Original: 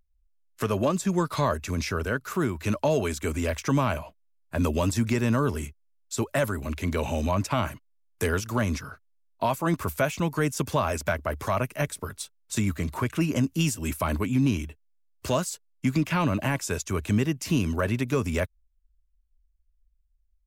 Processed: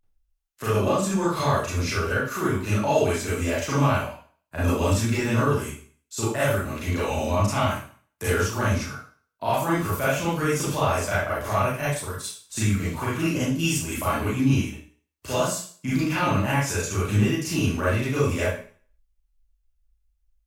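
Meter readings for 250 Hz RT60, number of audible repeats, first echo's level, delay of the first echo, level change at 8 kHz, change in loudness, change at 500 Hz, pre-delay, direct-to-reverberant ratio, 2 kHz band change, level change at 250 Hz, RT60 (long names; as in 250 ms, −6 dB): 0.40 s, no echo audible, no echo audible, no echo audible, +4.0 dB, +2.5 dB, +3.0 dB, 31 ms, −9.5 dB, +4.5 dB, +1.0 dB, 0.45 s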